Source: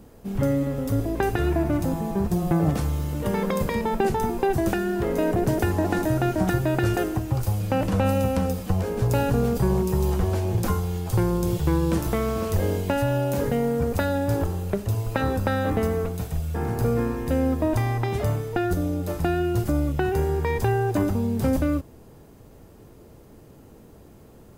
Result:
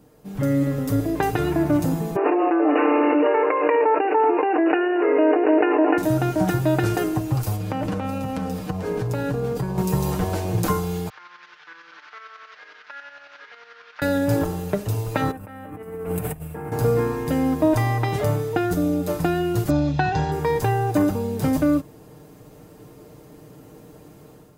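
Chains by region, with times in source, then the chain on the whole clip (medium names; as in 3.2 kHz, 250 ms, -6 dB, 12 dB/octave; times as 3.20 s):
2.16–5.98 s: brick-wall FIR band-pass 270–2900 Hz + level flattener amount 100%
7.56–9.78 s: compression, threshold -24 dBFS + treble shelf 5.8 kHz -8.5 dB
11.09–14.02 s: one-bit delta coder 32 kbps, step -27.5 dBFS + ladder band-pass 1.7 kHz, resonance 50% + tremolo saw up 11 Hz, depth 70%
15.31–16.72 s: compressor with a negative ratio -31 dBFS, ratio -0.5 + high-order bell 4.9 kHz -13 dB 1.2 oct
19.70–20.32 s: steep low-pass 6.6 kHz 48 dB/octave + peaking EQ 3.9 kHz +8.5 dB 0.44 oct + comb 1.2 ms, depth 50%
whole clip: high-pass 95 Hz 6 dB/octave; comb 6.6 ms, depth 55%; level rider gain up to 8 dB; trim -4.5 dB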